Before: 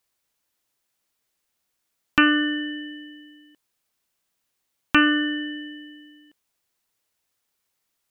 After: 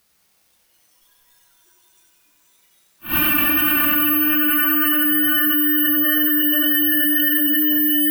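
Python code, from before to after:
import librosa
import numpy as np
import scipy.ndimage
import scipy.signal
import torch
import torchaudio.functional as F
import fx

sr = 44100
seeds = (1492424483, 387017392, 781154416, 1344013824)

y = fx.paulstretch(x, sr, seeds[0], factor=6.7, window_s=0.25, from_s=1.6)
y = fx.rider(y, sr, range_db=5, speed_s=2.0)
y = fx.noise_reduce_blind(y, sr, reduce_db=16)
y = fx.wow_flutter(y, sr, seeds[1], rate_hz=2.1, depth_cents=18.0)
y = fx.echo_feedback(y, sr, ms=93, feedback_pct=45, wet_db=-5.5)
y = fx.rev_plate(y, sr, seeds[2], rt60_s=4.9, hf_ratio=0.75, predelay_ms=0, drr_db=4.0)
y = (np.kron(scipy.signal.resample_poly(y, 1, 3), np.eye(3)[0]) * 3)[:len(y)]
y = fx.env_flatten(y, sr, amount_pct=100)
y = y * 10.0 ** (-11.0 / 20.0)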